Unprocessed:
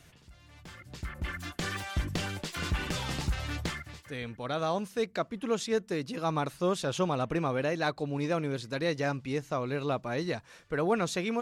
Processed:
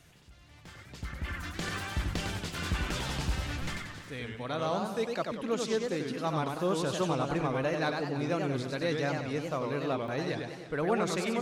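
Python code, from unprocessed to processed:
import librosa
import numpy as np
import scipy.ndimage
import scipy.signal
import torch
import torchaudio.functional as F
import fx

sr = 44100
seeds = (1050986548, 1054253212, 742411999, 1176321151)

y = x + 10.0 ** (-15.0 / 20.0) * np.pad(x, (int(325 * sr / 1000.0), 0))[:len(x)]
y = fx.buffer_glitch(y, sr, at_s=(3.62, 5.81, 10.03), block=256, repeats=8)
y = fx.echo_warbled(y, sr, ms=96, feedback_pct=49, rate_hz=2.8, cents=216, wet_db=-4.5)
y = y * librosa.db_to_amplitude(-2.0)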